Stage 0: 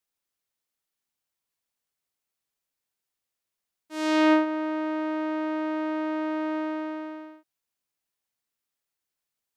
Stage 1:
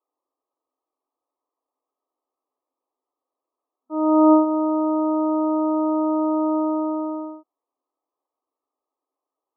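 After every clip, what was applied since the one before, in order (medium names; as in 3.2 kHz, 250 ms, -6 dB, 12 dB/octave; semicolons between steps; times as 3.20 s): FFT band-pass 250–1300 Hz; in parallel at 0 dB: compression, threshold -35 dBFS, peak gain reduction 17 dB; on the sum: trim +5 dB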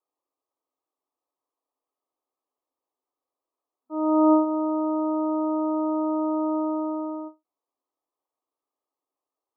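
endings held to a fixed fall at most 310 dB/s; trim -4 dB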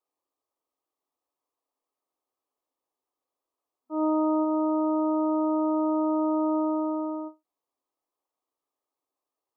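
peak limiter -18.5 dBFS, peak gain reduction 8 dB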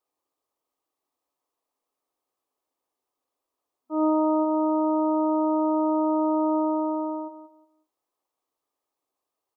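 feedback delay 182 ms, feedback 23%, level -11 dB; trim +3 dB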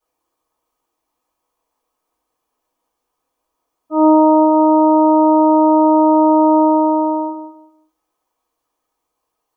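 reverberation RT60 0.30 s, pre-delay 3 ms, DRR -10 dB; trim -3 dB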